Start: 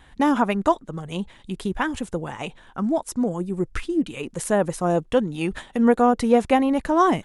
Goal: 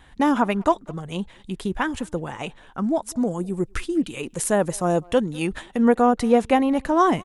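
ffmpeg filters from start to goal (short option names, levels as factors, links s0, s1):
-filter_complex "[0:a]asettb=1/sr,asplit=3[s0][s1][s2];[s0]atrim=end=3.124[s3];[s1]atrim=start=3.12:end=5.47,asetpts=PTS-STARTPTS,afade=t=in:d=0.004:c=qsin,afade=t=out:st=2.346:d=0.004:c=qsin,highshelf=f=5700:g=7[s4];[s2]atrim=start=5.466[s5];[s3][s4]acrossfade=d=0.004:c1=hsin:c2=qsin[s6];[s6][s5]acrossfade=d=0.004:c1=qsin:c2=hsin,asplit=2[s7][s8];[s8]adelay=200,highpass=300,lowpass=3400,asoftclip=type=hard:threshold=0.224,volume=0.0562[s9];[s7][s9]amix=inputs=2:normalize=0"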